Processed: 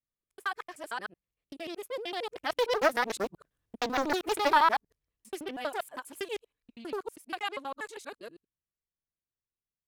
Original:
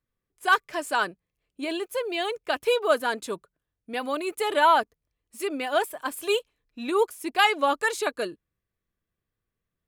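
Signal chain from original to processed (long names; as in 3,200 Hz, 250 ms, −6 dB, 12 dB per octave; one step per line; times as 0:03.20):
reversed piece by piece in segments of 78 ms
source passing by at 0:03.69, 9 m/s, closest 5.5 metres
highs frequency-modulated by the lows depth 0.48 ms
level +2 dB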